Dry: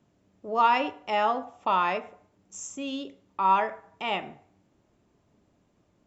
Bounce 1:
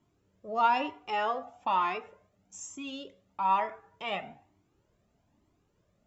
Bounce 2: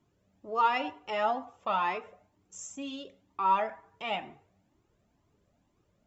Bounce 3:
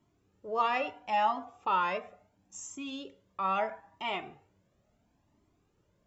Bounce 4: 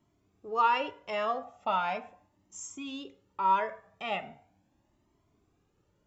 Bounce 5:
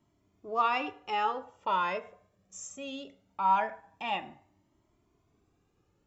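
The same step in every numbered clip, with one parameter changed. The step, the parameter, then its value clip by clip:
flanger whose copies keep moving one way, speed: 1.1, 2.1, 0.74, 0.39, 0.21 Hertz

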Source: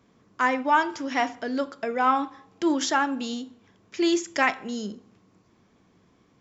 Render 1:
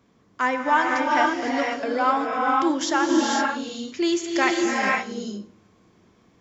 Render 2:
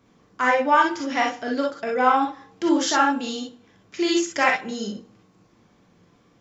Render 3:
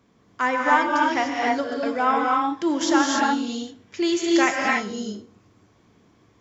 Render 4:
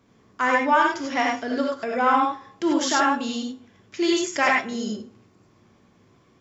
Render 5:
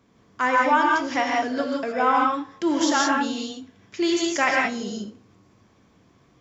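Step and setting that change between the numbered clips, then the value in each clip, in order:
reverb whose tail is shaped and stops, gate: 540, 80, 320, 120, 200 milliseconds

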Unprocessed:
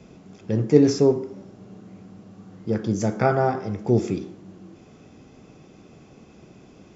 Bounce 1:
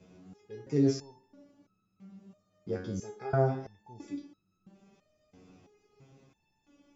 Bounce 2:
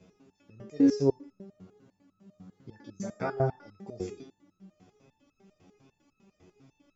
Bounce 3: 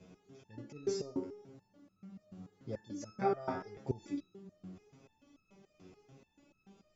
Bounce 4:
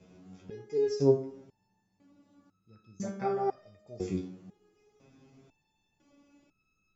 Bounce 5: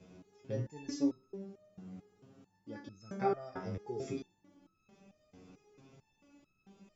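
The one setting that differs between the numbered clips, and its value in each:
step-sequenced resonator, speed: 3, 10, 6.9, 2, 4.5 Hertz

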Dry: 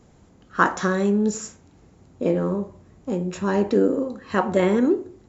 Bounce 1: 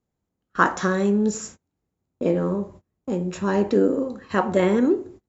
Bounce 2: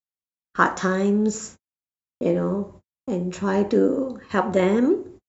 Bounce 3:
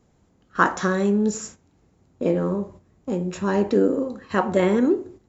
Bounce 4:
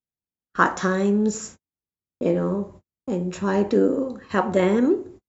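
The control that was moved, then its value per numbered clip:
noise gate, range: −27, −59, −8, −47 decibels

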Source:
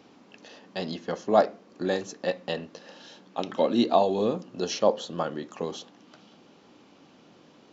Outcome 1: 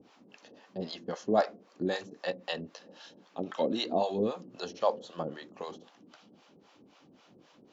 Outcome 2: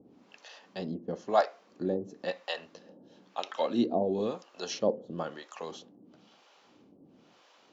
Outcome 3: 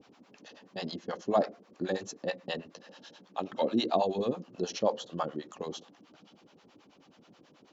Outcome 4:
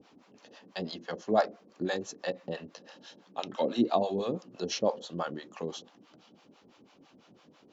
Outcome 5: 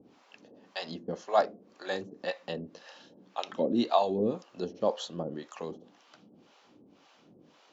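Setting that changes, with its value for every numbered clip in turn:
two-band tremolo in antiphase, speed: 3.8, 1, 9.3, 6, 1.9 Hertz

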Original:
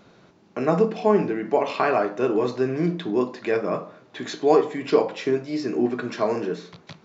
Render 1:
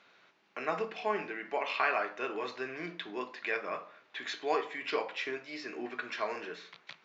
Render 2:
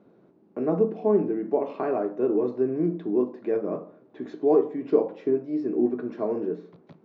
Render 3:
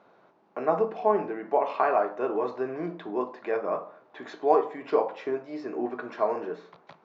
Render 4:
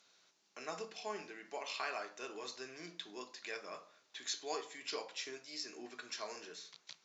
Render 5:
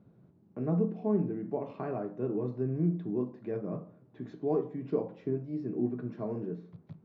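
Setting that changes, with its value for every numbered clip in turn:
resonant band-pass, frequency: 2,300, 320, 840, 6,800, 120 Hertz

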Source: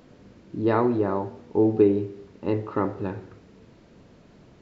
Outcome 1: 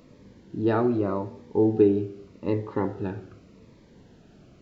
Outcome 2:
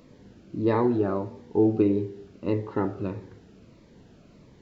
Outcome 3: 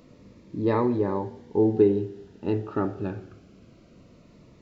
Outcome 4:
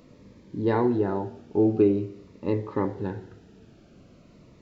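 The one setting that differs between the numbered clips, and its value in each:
phaser whose notches keep moving one way, speed: 0.84, 1.6, 0.23, 0.45 Hertz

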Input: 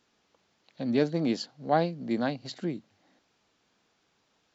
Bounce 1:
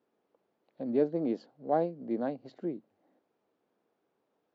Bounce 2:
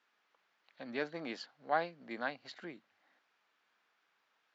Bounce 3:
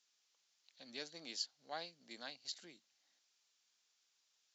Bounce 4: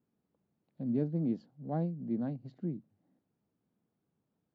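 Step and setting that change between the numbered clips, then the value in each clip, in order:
resonant band-pass, frequency: 440, 1,600, 6,600, 150 Hertz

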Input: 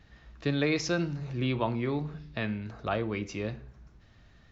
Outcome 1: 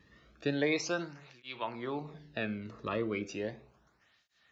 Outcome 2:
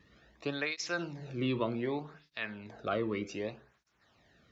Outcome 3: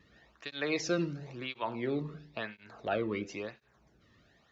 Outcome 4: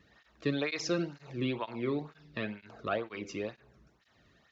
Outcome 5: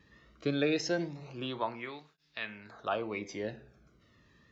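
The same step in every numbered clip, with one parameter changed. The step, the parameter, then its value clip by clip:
through-zero flanger with one copy inverted, nulls at: 0.35, 0.65, 0.97, 2.1, 0.23 Hertz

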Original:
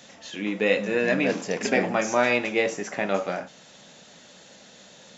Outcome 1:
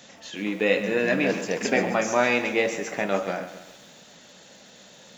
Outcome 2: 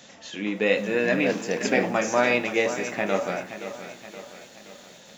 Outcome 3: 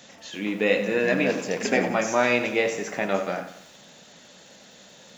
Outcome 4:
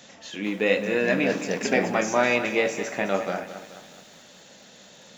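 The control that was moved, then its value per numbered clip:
feedback echo at a low word length, delay time: 135, 523, 90, 212 milliseconds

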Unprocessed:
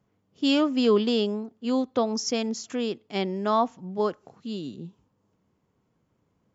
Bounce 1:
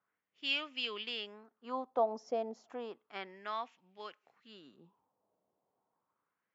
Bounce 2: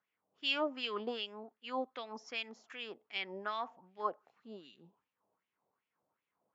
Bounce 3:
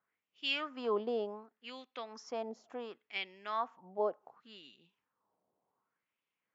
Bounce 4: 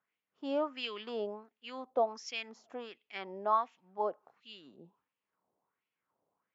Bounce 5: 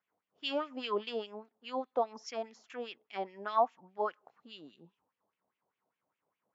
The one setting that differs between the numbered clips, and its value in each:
LFO wah, speed: 0.32, 2.6, 0.68, 1.4, 4.9 Hertz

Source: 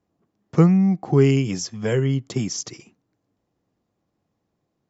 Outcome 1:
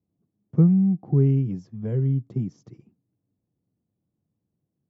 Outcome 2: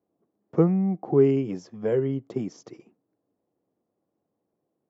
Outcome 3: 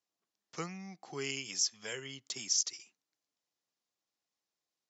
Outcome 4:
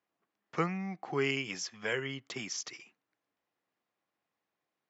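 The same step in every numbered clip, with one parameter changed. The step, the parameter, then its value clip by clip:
resonant band-pass, frequency: 130, 450, 5,500, 2,100 Hertz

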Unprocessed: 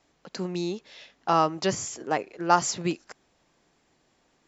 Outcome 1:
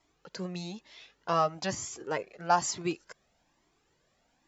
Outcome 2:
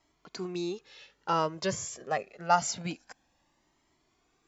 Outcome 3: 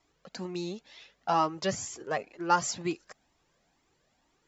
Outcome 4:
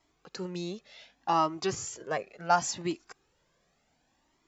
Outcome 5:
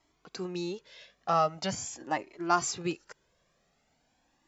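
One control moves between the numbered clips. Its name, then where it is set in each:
flanger whose copies keep moving one way, speed: 1.1, 0.26, 2.1, 0.69, 0.43 Hertz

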